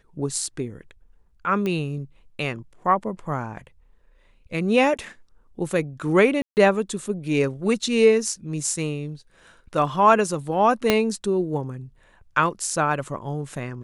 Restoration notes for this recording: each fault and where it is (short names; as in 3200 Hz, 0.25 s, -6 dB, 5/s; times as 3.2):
1.66 pop -15 dBFS
6.42–6.57 gap 0.149 s
10.9 pop -3 dBFS